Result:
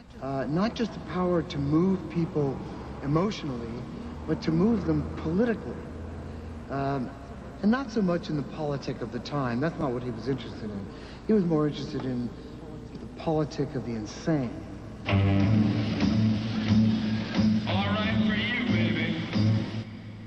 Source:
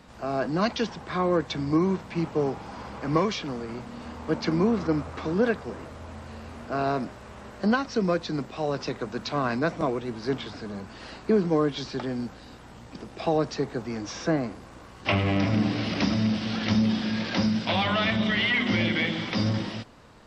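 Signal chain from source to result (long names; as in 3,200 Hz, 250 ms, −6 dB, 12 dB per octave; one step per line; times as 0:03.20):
low-shelf EQ 250 Hz +10.5 dB
backwards echo 658 ms −22 dB
on a send at −14 dB: convolution reverb RT60 5.5 s, pre-delay 128 ms
on the sum: level −5.5 dB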